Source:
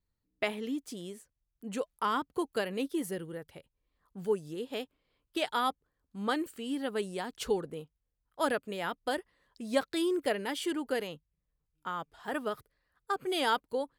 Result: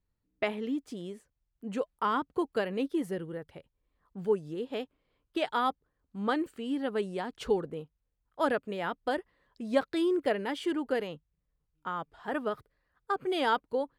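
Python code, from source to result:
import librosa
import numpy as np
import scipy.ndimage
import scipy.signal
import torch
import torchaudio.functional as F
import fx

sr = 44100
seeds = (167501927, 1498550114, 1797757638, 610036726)

y = fx.lowpass(x, sr, hz=2100.0, slope=6)
y = F.gain(torch.from_numpy(y), 2.5).numpy()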